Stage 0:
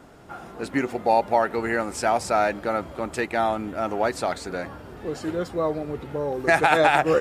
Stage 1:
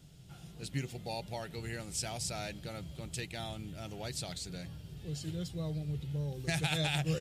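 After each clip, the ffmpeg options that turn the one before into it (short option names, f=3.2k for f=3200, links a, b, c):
-af "firequalizer=gain_entry='entry(100,0);entry(150,8);entry(220,-13);entry(1100,-23);entry(3100,1)':delay=0.05:min_phase=1,volume=-3.5dB"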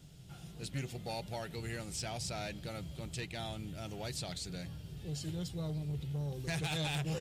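-filter_complex "[0:a]acrossover=split=5700[a][b];[a]asoftclip=type=tanh:threshold=-32.5dB[c];[b]alimiter=level_in=13.5dB:limit=-24dB:level=0:latency=1:release=485,volume=-13.5dB[d];[c][d]amix=inputs=2:normalize=0,volume=1dB"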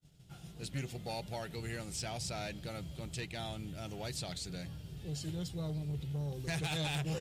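-af "agate=range=-33dB:threshold=-48dB:ratio=3:detection=peak"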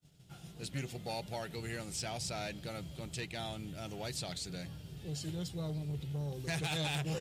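-af "lowshelf=f=67:g=-9,volume=1dB"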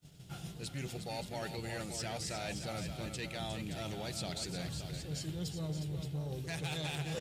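-af "areverse,acompressor=threshold=-45dB:ratio=6,areverse,aecho=1:1:359|573:0.398|0.355,volume=7dB"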